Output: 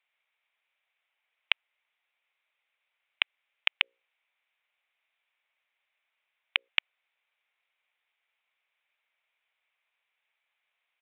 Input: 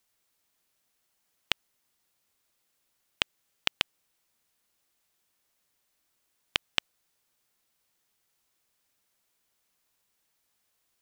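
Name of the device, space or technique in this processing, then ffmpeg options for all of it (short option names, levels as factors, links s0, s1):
musical greeting card: -filter_complex "[0:a]asettb=1/sr,asplit=3[s0][s1][s2];[s0]atrim=end=3.774[s3];[s1]atrim=start=3.77:end=6.69,asetpts=PTS-STARTPTS,afade=t=in:d=0.004:c=qsin,afade=t=out:st=2.916:d=0.004:c=qsin,bandreject=f=60:t=h:w=6,bandreject=f=120:t=h:w=6,bandreject=f=180:t=h:w=6,bandreject=f=240:t=h:w=6,bandreject=f=300:t=h:w=6,bandreject=f=360:t=h:w=6,bandreject=f=420:t=h:w=6,bandreject=f=480:t=h:w=6,bandreject=f=540:t=h:w=6[s4];[s2]atrim=start=6.686[s5];[s3][s4]acrossfade=d=0.004:c1=hsin:c2=qsin[s6];[s6][s5]acrossfade=d=0.004:c1=qsin:c2=hsin,aresample=8000,aresample=44100,highpass=f=570:w=0.5412,highpass=f=570:w=1.3066,equalizer=f=2300:t=o:w=0.55:g=11,volume=0.708"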